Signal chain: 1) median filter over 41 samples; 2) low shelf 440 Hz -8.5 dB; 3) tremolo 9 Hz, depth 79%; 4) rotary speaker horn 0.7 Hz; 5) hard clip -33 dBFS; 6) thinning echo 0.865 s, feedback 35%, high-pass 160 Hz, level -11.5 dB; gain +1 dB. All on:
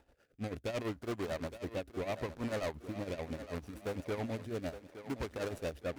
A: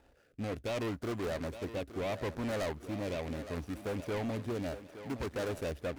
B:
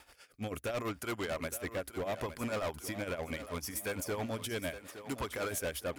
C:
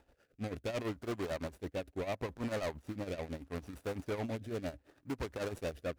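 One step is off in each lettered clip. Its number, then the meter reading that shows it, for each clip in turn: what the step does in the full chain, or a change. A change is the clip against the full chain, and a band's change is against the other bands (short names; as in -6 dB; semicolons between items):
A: 3, crest factor change -2.0 dB; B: 1, 8 kHz band +11.0 dB; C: 6, crest factor change -3.0 dB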